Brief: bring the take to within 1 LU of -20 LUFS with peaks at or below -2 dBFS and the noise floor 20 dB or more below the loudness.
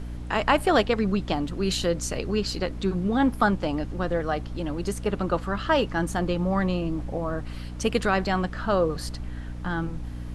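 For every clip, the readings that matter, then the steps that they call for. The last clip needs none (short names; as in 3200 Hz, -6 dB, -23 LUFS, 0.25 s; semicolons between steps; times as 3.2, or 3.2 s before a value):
hum 60 Hz; harmonics up to 300 Hz; hum level -33 dBFS; noise floor -35 dBFS; noise floor target -46 dBFS; loudness -26.0 LUFS; peak -6.0 dBFS; loudness target -20.0 LUFS
-> de-hum 60 Hz, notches 5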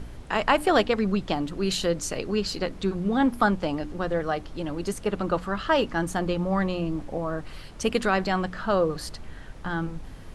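hum none; noise floor -42 dBFS; noise floor target -47 dBFS
-> noise print and reduce 6 dB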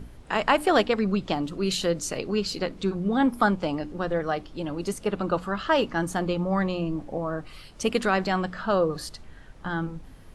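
noise floor -47 dBFS; loudness -26.5 LUFS; peak -6.0 dBFS; loudness target -20.0 LUFS
-> gain +6.5 dB; limiter -2 dBFS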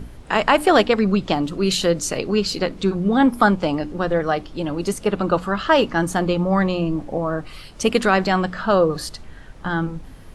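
loudness -20.0 LUFS; peak -2.0 dBFS; noise floor -41 dBFS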